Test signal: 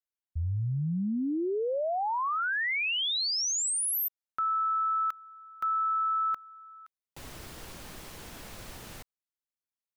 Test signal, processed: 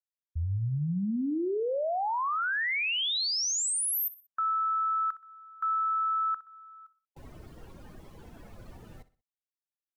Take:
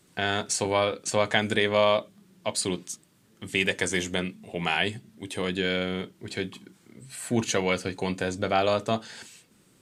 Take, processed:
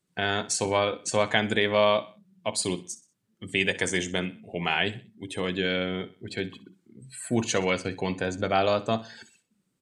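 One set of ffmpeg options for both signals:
-af "afftdn=nr=18:nf=-44,aecho=1:1:62|124|186:0.141|0.0523|0.0193"

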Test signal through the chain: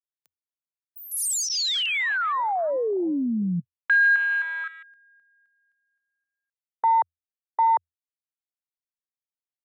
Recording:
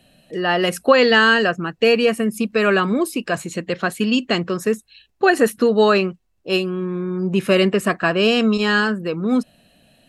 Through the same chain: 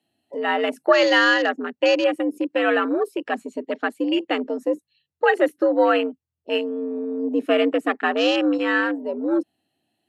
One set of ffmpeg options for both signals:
-af "afwtdn=0.0562,afreqshift=83,volume=-3dB"

